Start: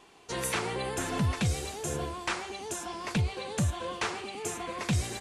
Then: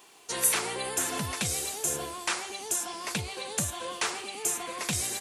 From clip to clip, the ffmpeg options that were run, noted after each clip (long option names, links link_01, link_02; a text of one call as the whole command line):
ffmpeg -i in.wav -af "aemphasis=mode=production:type=bsi" out.wav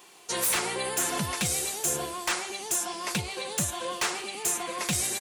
ffmpeg -i in.wav -af "aecho=1:1:5.6:0.31,aeval=exprs='0.0841*(abs(mod(val(0)/0.0841+3,4)-2)-1)':channel_layout=same,volume=2dB" out.wav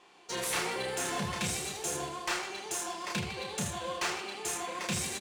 ffmpeg -i in.wav -af "aecho=1:1:30|78|154.8|277.7|474.3:0.631|0.398|0.251|0.158|0.1,adynamicsmooth=sensitivity=4:basefreq=4300,volume=-5dB" out.wav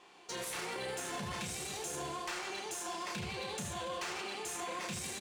ffmpeg -i in.wav -af "alimiter=level_in=7.5dB:limit=-24dB:level=0:latency=1:release=20,volume=-7.5dB" out.wav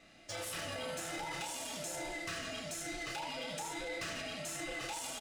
ffmpeg -i in.wav -af "afftfilt=real='real(if(between(b,1,1008),(2*floor((b-1)/48)+1)*48-b,b),0)':imag='imag(if(between(b,1,1008),(2*floor((b-1)/48)+1)*48-b,b),0)*if(between(b,1,1008),-1,1)':win_size=2048:overlap=0.75,volume=-1dB" out.wav